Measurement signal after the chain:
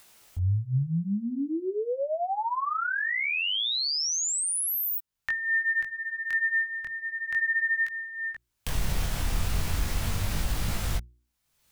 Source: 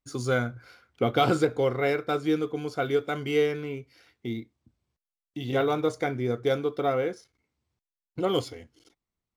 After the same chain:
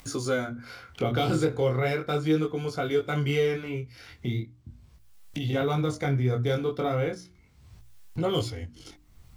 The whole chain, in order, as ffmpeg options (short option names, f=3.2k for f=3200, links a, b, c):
-filter_complex "[0:a]bandreject=f=60:t=h:w=6,bandreject=f=120:t=h:w=6,bandreject=f=180:t=h:w=6,bandreject=f=240:t=h:w=6,bandreject=f=300:t=h:w=6,bandreject=f=360:t=h:w=6,asubboost=boost=4.5:cutoff=150,acrossover=split=450|3000[a][b][c];[b]acompressor=threshold=-29dB:ratio=6[d];[a][d][c]amix=inputs=3:normalize=0,asplit=2[e][f];[f]alimiter=limit=-23dB:level=0:latency=1,volume=0dB[g];[e][g]amix=inputs=2:normalize=0,acompressor=mode=upward:threshold=-26dB:ratio=2.5,flanger=delay=18:depth=7.2:speed=0.37"